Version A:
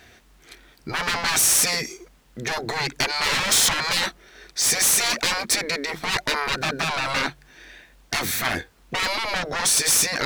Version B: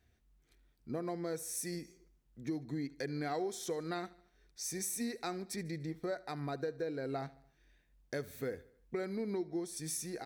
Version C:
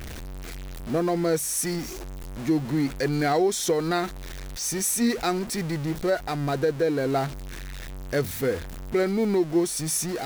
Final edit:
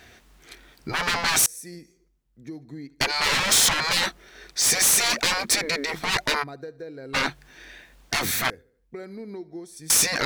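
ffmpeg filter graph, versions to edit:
-filter_complex "[1:a]asplit=3[a][b][c];[0:a]asplit=4[d][e][f][g];[d]atrim=end=1.462[h];[a]atrim=start=1.458:end=3.012[i];[e]atrim=start=3.008:end=6.44[j];[b]atrim=start=6.42:end=7.15[k];[f]atrim=start=7.13:end=8.502[l];[c]atrim=start=8.498:end=9.902[m];[g]atrim=start=9.898[n];[h][i]acrossfade=d=0.004:c1=hsin:c2=hsin[o];[o][j]acrossfade=d=0.004:c1=hsin:c2=hsin[p];[p][k]acrossfade=d=0.02:c1=tri:c2=tri[q];[q][l]acrossfade=d=0.02:c1=tri:c2=tri[r];[r][m]acrossfade=d=0.004:c1=hsin:c2=hsin[s];[s][n]acrossfade=d=0.004:c1=hsin:c2=hsin"

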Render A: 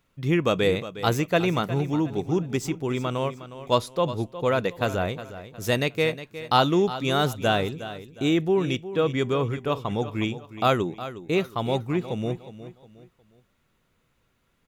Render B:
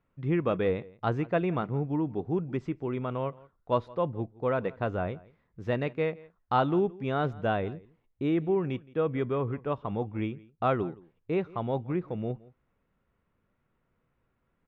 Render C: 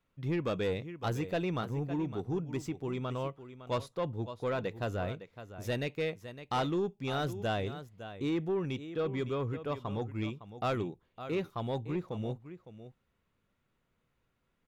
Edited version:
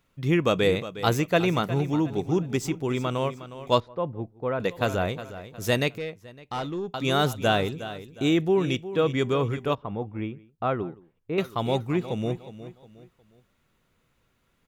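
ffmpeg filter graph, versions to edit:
-filter_complex "[1:a]asplit=2[a][b];[0:a]asplit=4[c][d][e][f];[c]atrim=end=3.802[g];[a]atrim=start=3.798:end=4.602[h];[d]atrim=start=4.598:end=5.982[i];[2:a]atrim=start=5.978:end=6.942[j];[e]atrim=start=6.938:end=9.752[k];[b]atrim=start=9.748:end=11.382[l];[f]atrim=start=11.378[m];[g][h]acrossfade=d=0.004:c1=hsin:c2=hsin[n];[n][i]acrossfade=d=0.004:c1=hsin:c2=hsin[o];[o][j]acrossfade=d=0.004:c1=hsin:c2=hsin[p];[p][k]acrossfade=d=0.004:c1=hsin:c2=hsin[q];[q][l]acrossfade=d=0.004:c1=hsin:c2=hsin[r];[r][m]acrossfade=d=0.004:c1=hsin:c2=hsin"

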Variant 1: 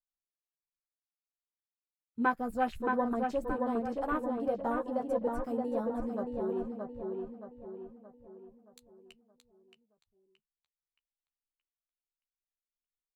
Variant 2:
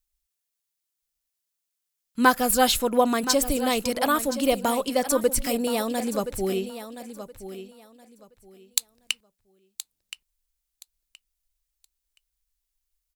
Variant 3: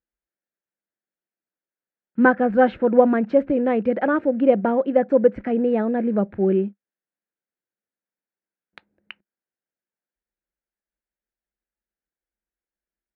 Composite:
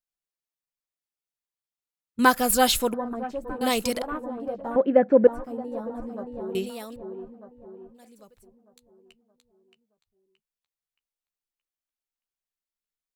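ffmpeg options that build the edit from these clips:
-filter_complex "[1:a]asplit=4[a][b][c][d];[0:a]asplit=6[e][f][g][h][i][j];[e]atrim=end=2.192[k];[a]atrim=start=2.188:end=2.942[l];[f]atrim=start=2.938:end=3.612[m];[b]atrim=start=3.608:end=4.022[n];[g]atrim=start=4.018:end=4.762[o];[2:a]atrim=start=4.758:end=5.272[p];[h]atrim=start=5.268:end=6.552[q];[c]atrim=start=6.548:end=6.962[r];[i]atrim=start=6.958:end=8[s];[d]atrim=start=7.94:end=8.48[t];[j]atrim=start=8.42[u];[k][l]acrossfade=d=0.004:c1=hsin:c2=hsin[v];[v][m]acrossfade=d=0.004:c1=hsin:c2=hsin[w];[w][n]acrossfade=d=0.004:c1=hsin:c2=hsin[x];[x][o]acrossfade=d=0.004:c1=hsin:c2=hsin[y];[y][p]acrossfade=d=0.004:c1=hsin:c2=hsin[z];[z][q]acrossfade=d=0.004:c1=hsin:c2=hsin[aa];[aa][r]acrossfade=d=0.004:c1=hsin:c2=hsin[ab];[ab][s]acrossfade=d=0.004:c1=hsin:c2=hsin[ac];[ac][t]acrossfade=d=0.06:c1=tri:c2=tri[ad];[ad][u]acrossfade=d=0.06:c1=tri:c2=tri"

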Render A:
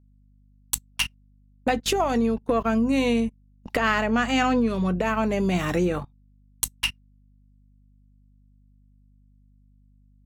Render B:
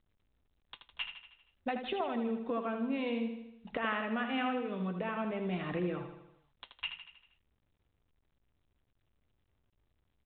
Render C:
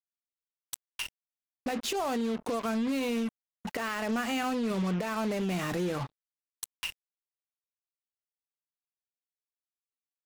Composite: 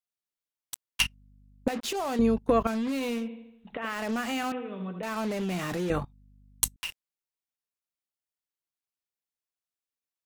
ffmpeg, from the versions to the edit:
-filter_complex "[0:a]asplit=3[a][b][c];[1:a]asplit=2[d][e];[2:a]asplit=6[f][g][h][i][j][k];[f]atrim=end=1.002[l];[a]atrim=start=0.998:end=1.682[m];[g]atrim=start=1.678:end=2.192[n];[b]atrim=start=2.188:end=2.672[o];[h]atrim=start=2.668:end=3.29[p];[d]atrim=start=3.13:end=3.97[q];[i]atrim=start=3.81:end=4.522[r];[e]atrim=start=4.518:end=5.032[s];[j]atrim=start=5.028:end=5.902[t];[c]atrim=start=5.898:end=6.762[u];[k]atrim=start=6.758[v];[l][m]acrossfade=d=0.004:c1=hsin:c2=hsin[w];[w][n]acrossfade=d=0.004:c1=hsin:c2=hsin[x];[x][o]acrossfade=d=0.004:c1=hsin:c2=hsin[y];[y][p]acrossfade=d=0.004:c1=hsin:c2=hsin[z];[z][q]acrossfade=d=0.16:c1=tri:c2=tri[aa];[aa][r]acrossfade=d=0.16:c1=tri:c2=tri[ab];[ab][s]acrossfade=d=0.004:c1=hsin:c2=hsin[ac];[ac][t]acrossfade=d=0.004:c1=hsin:c2=hsin[ad];[ad][u]acrossfade=d=0.004:c1=hsin:c2=hsin[ae];[ae][v]acrossfade=d=0.004:c1=hsin:c2=hsin"

